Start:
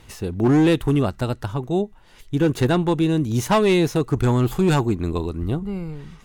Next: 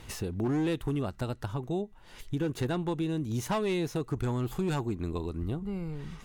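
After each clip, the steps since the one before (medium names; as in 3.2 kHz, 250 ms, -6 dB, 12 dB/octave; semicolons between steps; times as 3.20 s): compression 2.5:1, threshold -34 dBFS, peak gain reduction 13 dB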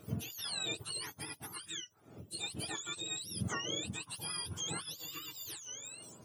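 spectrum inverted on a logarithmic axis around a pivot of 1.1 kHz; trim -5 dB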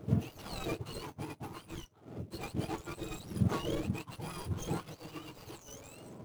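median filter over 25 samples; trim +8.5 dB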